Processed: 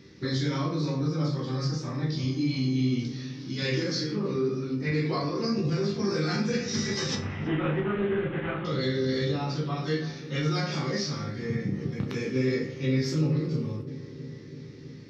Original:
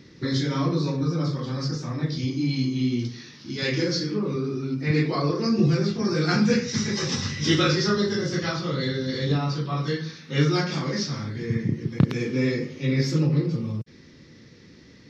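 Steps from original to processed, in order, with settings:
0:07.15–0:08.65: variable-slope delta modulation 16 kbit/s
brickwall limiter −16.5 dBFS, peak gain reduction 9.5 dB
resonators tuned to a chord C2 minor, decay 0.31 s
on a send: feedback echo with a low-pass in the loop 328 ms, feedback 80%, low-pass 1,200 Hz, level −15 dB
on the sum: level +8.5 dB

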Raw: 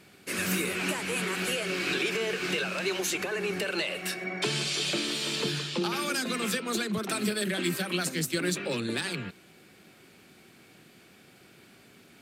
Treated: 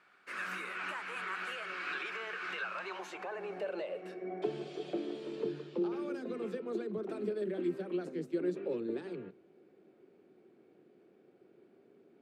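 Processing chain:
0:04.28–0:05.20: hollow resonant body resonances 720/3,300 Hz, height 11 dB
on a send at −21 dB: convolution reverb RT60 0.45 s, pre-delay 6 ms
on the sum: band-pass filter sweep 1,300 Hz → 400 Hz, 0:02.58–0:04.30

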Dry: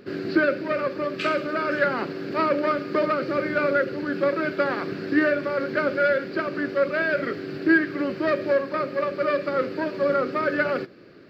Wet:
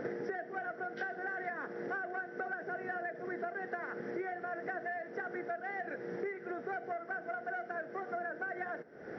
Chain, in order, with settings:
linear-phase brick-wall low-pass 4,800 Hz
high shelf with overshoot 1,700 Hz −10.5 dB, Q 3
notch filter 800 Hz, Q 22
speed change +23%
downward compressor 12 to 1, threshold −44 dBFS, peak gain reduction 29.5 dB
level +7 dB

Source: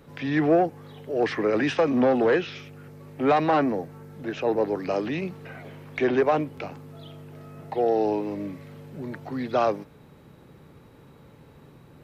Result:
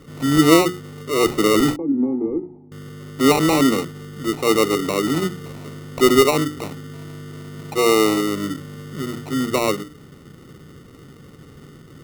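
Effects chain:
low shelf with overshoot 530 Hz +8 dB, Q 1.5
mains-hum notches 60/120/180/240/300/360/420 Hz
decimation without filtering 27×
0:01.76–0:02.72: formant resonators in series u

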